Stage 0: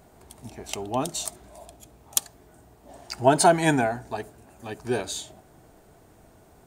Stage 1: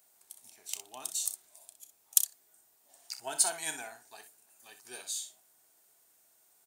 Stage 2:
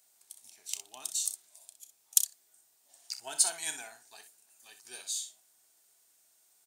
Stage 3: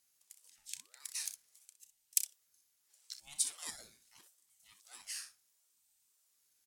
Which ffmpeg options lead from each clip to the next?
-filter_complex "[0:a]aderivative,asplit=2[s0][s1];[s1]aecho=0:1:32|62:0.251|0.299[s2];[s0][s2]amix=inputs=2:normalize=0,volume=0.794"
-af "equalizer=f=5300:t=o:w=2.7:g=8,volume=0.531"
-af "asuperstop=centerf=960:order=12:qfactor=0.82,aeval=exprs='val(0)*sin(2*PI*1200*n/s+1200*0.65/0.76*sin(2*PI*0.76*n/s))':c=same,volume=0.562"

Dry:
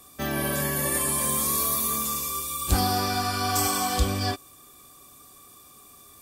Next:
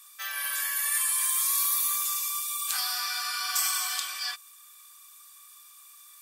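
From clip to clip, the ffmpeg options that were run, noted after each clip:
-af "highpass=f=1300:w=0.5412,highpass=f=1300:w=1.3066"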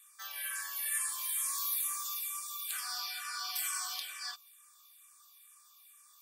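-filter_complex "[0:a]asplit=2[s0][s1];[s1]afreqshift=-2.2[s2];[s0][s2]amix=inputs=2:normalize=1,volume=0.531"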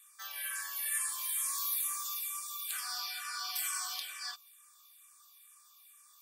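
-af anull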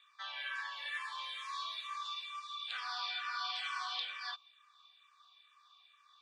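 -af "highpass=310,equalizer=f=480:t=q:w=4:g=6,equalizer=f=940:t=q:w=4:g=7,equalizer=f=3700:t=q:w=4:g=7,lowpass=f=3800:w=0.5412,lowpass=f=3800:w=1.3066,volume=1.19"

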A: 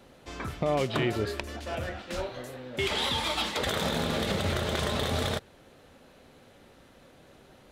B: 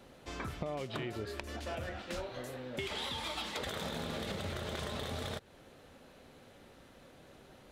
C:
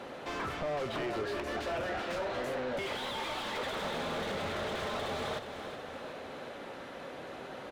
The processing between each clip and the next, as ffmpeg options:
-af "acompressor=threshold=0.02:ratio=6,volume=0.794"
-filter_complex "[0:a]asplit=2[s0][s1];[s1]highpass=f=720:p=1,volume=31.6,asoftclip=type=tanh:threshold=0.0794[s2];[s0][s2]amix=inputs=2:normalize=0,lowpass=f=1300:p=1,volume=0.501,aecho=1:1:369|738|1107|1476|1845|2214:0.316|0.168|0.0888|0.0471|0.025|0.0132,volume=0.631"

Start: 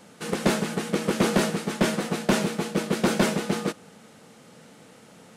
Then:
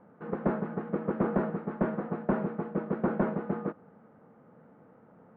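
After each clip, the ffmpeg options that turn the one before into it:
-af "lowpass=f=1400:w=0.5412,lowpass=f=1400:w=1.3066,volume=0.531"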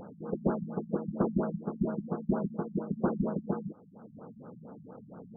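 -af "acompressor=mode=upward:threshold=0.0158:ratio=2.5,afftfilt=real='re*lt(b*sr/1024,210*pow(1700/210,0.5+0.5*sin(2*PI*4.3*pts/sr)))':imag='im*lt(b*sr/1024,210*pow(1700/210,0.5+0.5*sin(2*PI*4.3*pts/sr)))':win_size=1024:overlap=0.75"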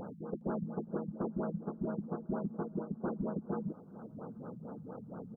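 -af "areverse,acompressor=threshold=0.0158:ratio=6,areverse,aecho=1:1:412|824|1236|1648:0.0708|0.0396|0.0222|0.0124,volume=1.33"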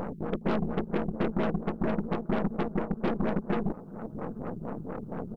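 -filter_complex "[0:a]aeval=exprs='0.0596*(cos(1*acos(clip(val(0)/0.0596,-1,1)))-cos(1*PI/2))+0.00944*(cos(8*acos(clip(val(0)/0.0596,-1,1)))-cos(8*PI/2))':c=same,asplit=2[s0][s1];[s1]asoftclip=type=hard:threshold=0.0158,volume=0.282[s2];[s0][s2]amix=inputs=2:normalize=0,volume=2"

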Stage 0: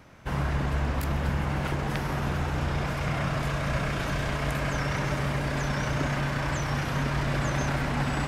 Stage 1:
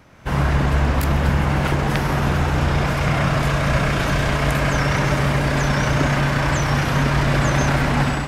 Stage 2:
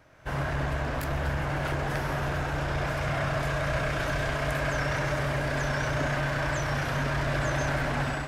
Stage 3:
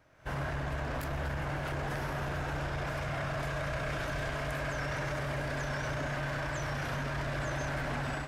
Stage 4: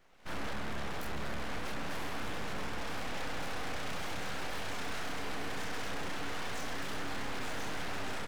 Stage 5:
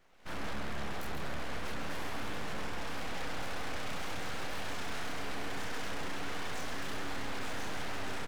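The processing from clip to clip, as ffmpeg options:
-af "dynaudnorm=f=100:g=5:m=2.24,volume=1.33"
-af "equalizer=f=200:t=o:w=0.33:g=-11,equalizer=f=630:t=o:w=0.33:g=6,equalizer=f=1600:t=o:w=0.33:g=5,asoftclip=type=tanh:threshold=0.282,flanger=delay=6.1:depth=1.8:regen=-80:speed=0.79:shape=triangular,volume=0.596"
-af "dynaudnorm=f=170:g=3:m=2.11,alimiter=limit=0.0891:level=0:latency=1,volume=0.447"
-filter_complex "[0:a]asoftclip=type=hard:threshold=0.0188,asplit=2[s0][s1];[s1]adelay=28,volume=0.708[s2];[s0][s2]amix=inputs=2:normalize=0,aeval=exprs='abs(val(0))':c=same"
-af "aecho=1:1:138:0.376,volume=0.891"

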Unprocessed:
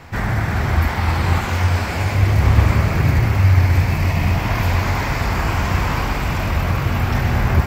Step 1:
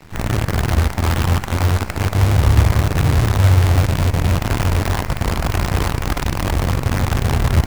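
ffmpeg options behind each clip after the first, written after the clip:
-filter_complex "[0:a]lowshelf=f=260:g=7.5,acrossover=split=1800[s0][s1];[s0]acrusher=bits=3:dc=4:mix=0:aa=0.000001[s2];[s1]asoftclip=type=tanh:threshold=0.0141[s3];[s2][s3]amix=inputs=2:normalize=0,volume=0.501"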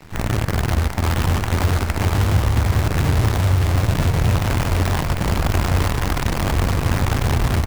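-af "acompressor=threshold=0.178:ratio=3,aecho=1:1:1043:0.562"

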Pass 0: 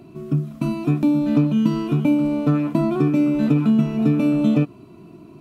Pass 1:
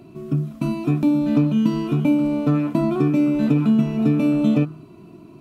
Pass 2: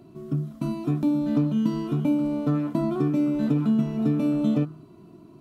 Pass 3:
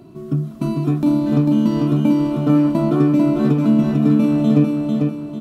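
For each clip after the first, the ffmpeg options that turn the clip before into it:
-af "bandreject=f=77.66:t=h:w=4,bandreject=f=155.32:t=h:w=4,bandreject=f=232.98:t=h:w=4,bandreject=f=310.64:t=h:w=4,bandreject=f=388.3:t=h:w=4,bandreject=f=465.96:t=h:w=4,bandreject=f=543.62:t=h:w=4,bandreject=f=621.28:t=h:w=4,bandreject=f=698.94:t=h:w=4,bandreject=f=776.6:t=h:w=4,bandreject=f=854.26:t=h:w=4,bandreject=f=931.92:t=h:w=4,bandreject=f=1009.58:t=h:w=4,bandreject=f=1087.24:t=h:w=4,bandreject=f=1164.9:t=h:w=4,bandreject=f=1242.56:t=h:w=4,bandreject=f=1320.22:t=h:w=4,bandreject=f=1397.88:t=h:w=4,bandreject=f=1475.54:t=h:w=4,bandreject=f=1553.2:t=h:w=4,bandreject=f=1630.86:t=h:w=4,bandreject=f=1708.52:t=h:w=4,bandreject=f=1786.18:t=h:w=4,bandreject=f=1863.84:t=h:w=4,bandreject=f=1941.5:t=h:w=4,bandreject=f=2019.16:t=h:w=4,bandreject=f=2096.82:t=h:w=4,bandreject=f=2174.48:t=h:w=4,bandreject=f=2252.14:t=h:w=4"
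-af "equalizer=f=2500:t=o:w=0.26:g=-9,volume=0.562"
-af "aecho=1:1:446|892|1338|1784|2230:0.668|0.261|0.102|0.0396|0.0155,volume=2.11"

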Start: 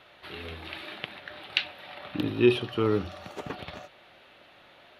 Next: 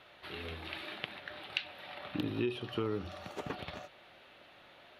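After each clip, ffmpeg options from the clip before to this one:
-af "acompressor=threshold=0.0447:ratio=10,volume=0.708"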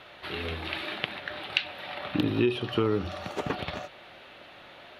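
-af "highshelf=f=10000:g=-5.5,volume=2.82"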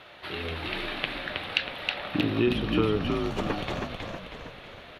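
-filter_complex "[0:a]asplit=8[s0][s1][s2][s3][s4][s5][s6][s7];[s1]adelay=319,afreqshift=-59,volume=0.668[s8];[s2]adelay=638,afreqshift=-118,volume=0.335[s9];[s3]adelay=957,afreqshift=-177,volume=0.168[s10];[s4]adelay=1276,afreqshift=-236,volume=0.0832[s11];[s5]adelay=1595,afreqshift=-295,volume=0.0417[s12];[s6]adelay=1914,afreqshift=-354,volume=0.0209[s13];[s7]adelay=2233,afreqshift=-413,volume=0.0105[s14];[s0][s8][s9][s10][s11][s12][s13][s14]amix=inputs=8:normalize=0"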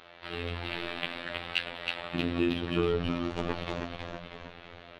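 -af "afftfilt=real='hypot(re,im)*cos(PI*b)':imag='0':win_size=2048:overlap=0.75,adynamicsmooth=sensitivity=7:basefreq=6900"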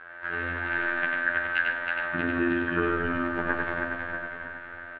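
-filter_complex "[0:a]lowpass=f=1600:t=q:w=12,asplit=2[s0][s1];[s1]aecho=0:1:96.21|145.8:0.708|0.251[s2];[s0][s2]amix=inputs=2:normalize=0,volume=0.891"

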